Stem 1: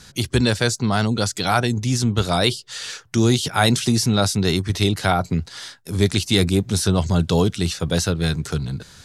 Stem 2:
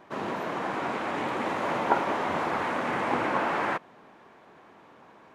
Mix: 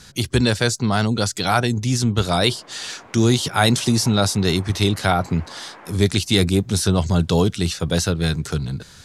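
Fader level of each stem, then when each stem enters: +0.5, −15.0 decibels; 0.00, 2.15 seconds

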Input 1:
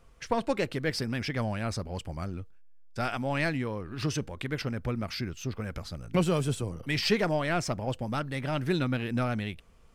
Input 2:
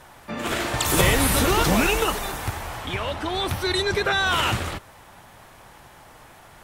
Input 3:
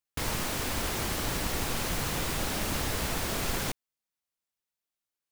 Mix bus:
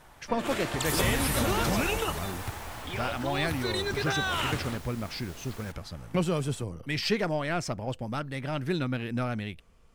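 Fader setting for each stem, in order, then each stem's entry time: −1.5, −8.0, −16.0 decibels; 0.00, 0.00, 2.00 seconds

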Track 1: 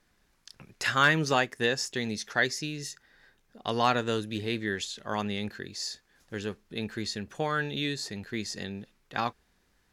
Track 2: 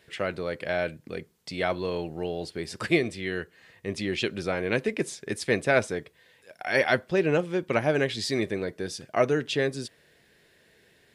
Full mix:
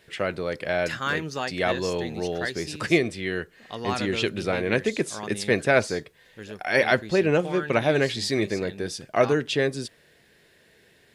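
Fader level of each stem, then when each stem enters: −5.0, +2.5 decibels; 0.05, 0.00 seconds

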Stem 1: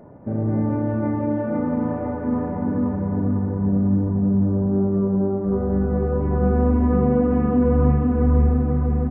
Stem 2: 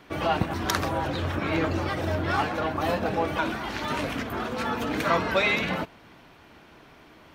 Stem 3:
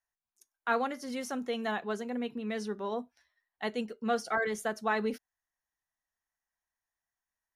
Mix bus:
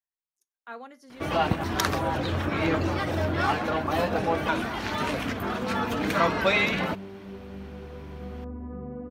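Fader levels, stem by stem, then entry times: −19.5, +0.5, −11.5 decibels; 1.80, 1.10, 0.00 seconds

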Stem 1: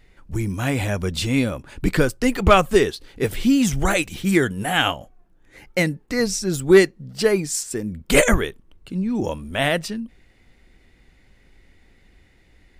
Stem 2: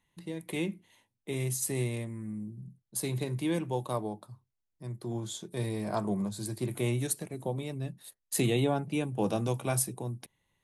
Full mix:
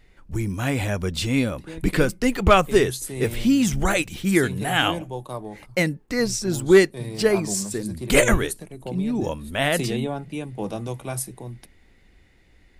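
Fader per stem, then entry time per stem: −1.5, 0.0 decibels; 0.00, 1.40 seconds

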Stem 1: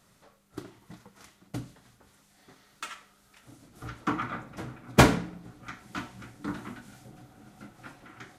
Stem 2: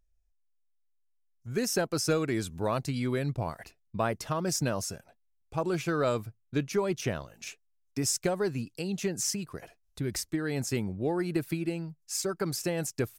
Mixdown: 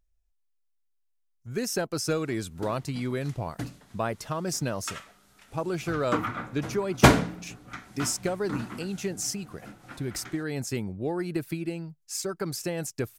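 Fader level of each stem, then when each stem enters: +1.5, −0.5 decibels; 2.05, 0.00 seconds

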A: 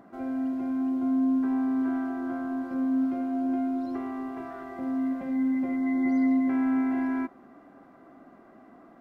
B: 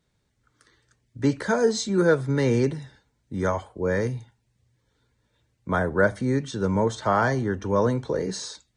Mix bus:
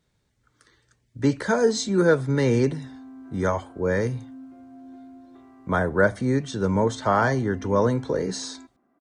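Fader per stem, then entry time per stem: −16.5, +1.0 decibels; 1.40, 0.00 seconds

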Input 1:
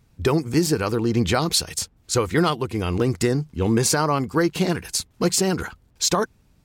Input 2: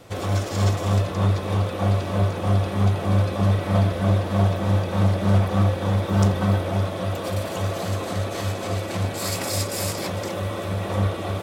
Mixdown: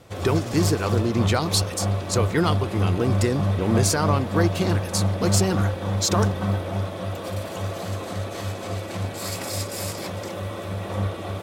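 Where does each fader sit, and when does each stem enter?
−2.5, −3.5 decibels; 0.00, 0.00 seconds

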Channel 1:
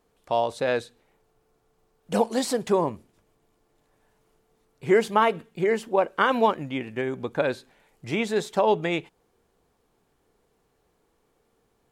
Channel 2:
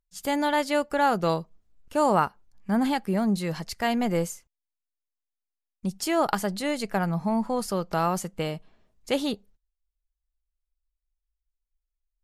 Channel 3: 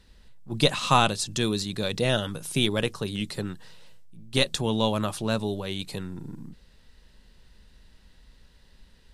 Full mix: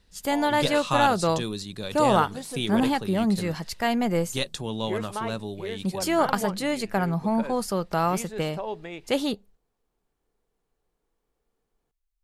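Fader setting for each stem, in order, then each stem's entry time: −12.0, +1.0, −5.5 decibels; 0.00, 0.00, 0.00 seconds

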